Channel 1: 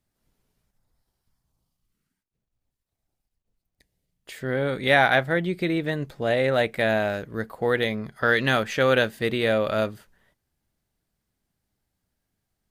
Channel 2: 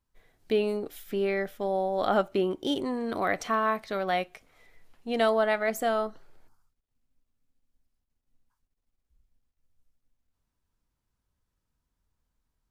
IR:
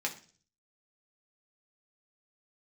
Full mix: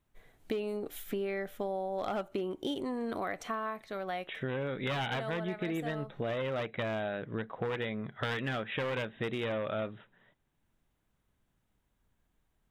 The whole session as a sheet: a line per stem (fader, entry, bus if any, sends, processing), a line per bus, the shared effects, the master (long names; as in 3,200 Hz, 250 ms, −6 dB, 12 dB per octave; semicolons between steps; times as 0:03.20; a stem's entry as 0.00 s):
0.0 dB, 0.00 s, no send, wavefolder on the positive side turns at −19.5 dBFS; brick-wall band-pass 100–3,900 Hz
+2.0 dB, 0.00 s, no send, automatic ducking −9 dB, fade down 0.75 s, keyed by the first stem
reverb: not used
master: parametric band 5,000 Hz −6 dB 0.46 octaves; hard clipping −16.5 dBFS, distortion −20 dB; downward compressor, threshold −32 dBFS, peak gain reduction 12 dB